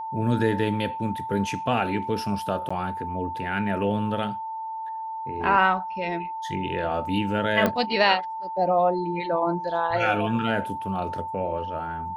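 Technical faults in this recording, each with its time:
whine 890 Hz -30 dBFS
2.69–2.71 s: dropout 15 ms
7.66 s: pop -9 dBFS

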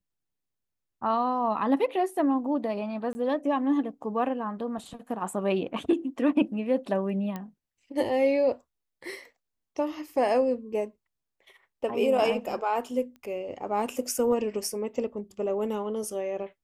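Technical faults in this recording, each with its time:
3.13–3.15 s: dropout 20 ms
7.36 s: pop -21 dBFS
13.16 s: pop -36 dBFS

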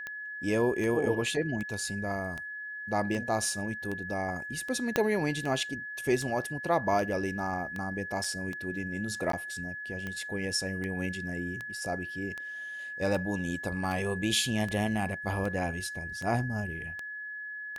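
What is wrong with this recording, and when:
tick 78 rpm -23 dBFS
whine 1.7 kHz -37 dBFS
4.96 s: pop -10 dBFS
8.24 s: dropout 3.2 ms
9.32–9.33 s: dropout 13 ms
13.84 s: dropout 2.6 ms

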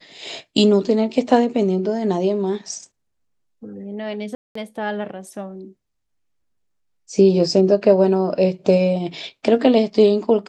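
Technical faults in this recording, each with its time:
4.35–4.55 s: dropout 204 ms

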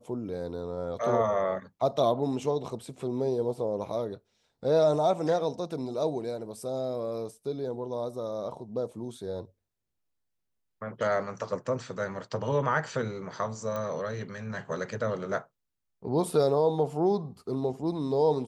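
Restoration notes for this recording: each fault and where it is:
13.76 s: pop -21 dBFS

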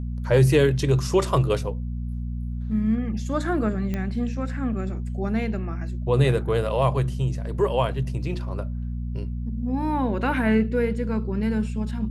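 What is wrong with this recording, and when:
hum 60 Hz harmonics 4 -29 dBFS
3.94 s: pop -16 dBFS

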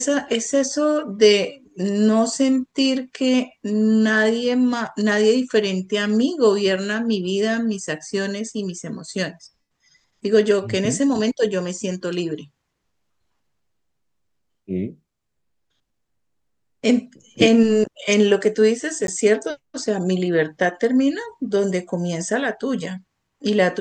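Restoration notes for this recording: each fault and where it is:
19.07–19.08 s: dropout 12 ms

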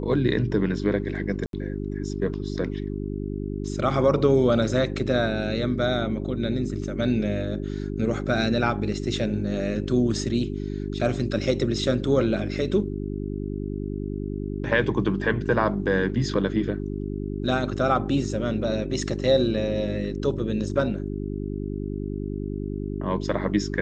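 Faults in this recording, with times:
hum 50 Hz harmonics 8 -30 dBFS
1.46–1.53 s: dropout 72 ms

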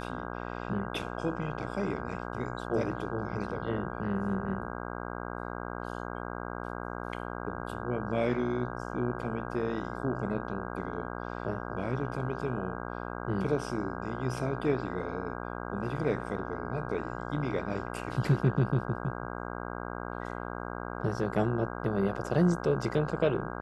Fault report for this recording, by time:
buzz 60 Hz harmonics 27 -38 dBFS

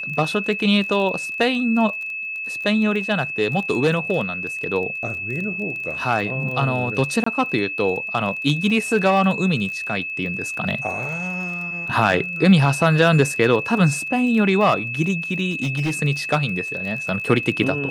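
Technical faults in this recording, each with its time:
crackle 25 per s -29 dBFS
whine 2.6 kHz -26 dBFS
7.24–7.26 s: dropout 24 ms
15.50–15.92 s: clipped -18 dBFS

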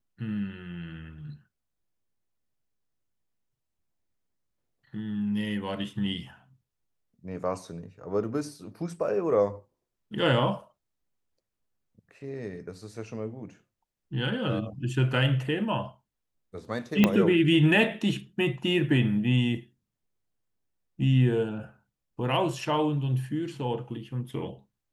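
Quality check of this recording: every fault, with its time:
17.04 s: pop -7 dBFS

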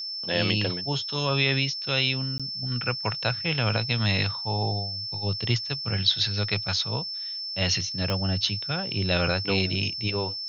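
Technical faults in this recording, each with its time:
whine 5.3 kHz -31 dBFS
2.38–2.40 s: dropout 16 ms
8.10 s: pop -13 dBFS

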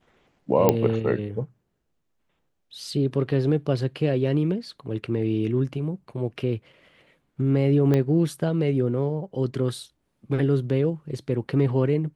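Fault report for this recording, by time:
0.69 s: pop -4 dBFS
7.94 s: pop -12 dBFS

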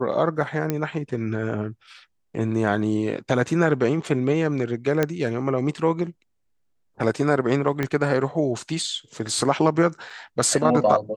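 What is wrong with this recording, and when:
0.70 s: pop -10 dBFS
5.03 s: pop -8 dBFS
7.83 s: pop -11 dBFS
10.10 s: dropout 4.5 ms

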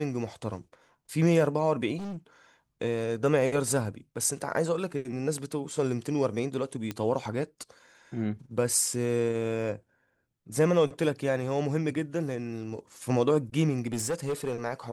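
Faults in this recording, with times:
1.97–2.17 s: clipped -34 dBFS
6.91 s: pop -18 dBFS
13.87–14.56 s: clipped -25.5 dBFS

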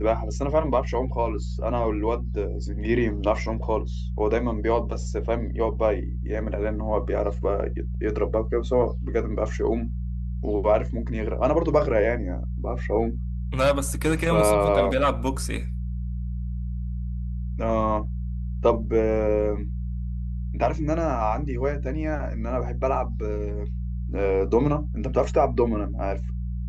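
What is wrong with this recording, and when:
hum 60 Hz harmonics 3 -29 dBFS

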